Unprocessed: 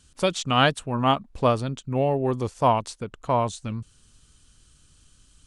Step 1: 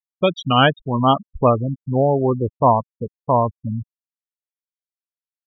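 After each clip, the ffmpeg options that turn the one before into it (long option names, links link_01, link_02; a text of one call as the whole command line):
ffmpeg -i in.wav -af "acontrast=61,afftfilt=real='re*gte(hypot(re,im),0.2)':imag='im*gte(hypot(re,im),0.2)':win_size=1024:overlap=0.75" out.wav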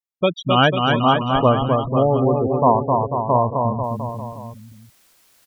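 ffmpeg -i in.wav -af "areverse,acompressor=mode=upward:threshold=-27dB:ratio=2.5,areverse,aecho=1:1:260|494|704.6|894.1|1065:0.631|0.398|0.251|0.158|0.1,volume=-1dB" out.wav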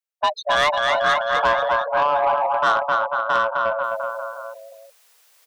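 ffmpeg -i in.wav -af "afreqshift=440,asoftclip=type=tanh:threshold=-11.5dB" out.wav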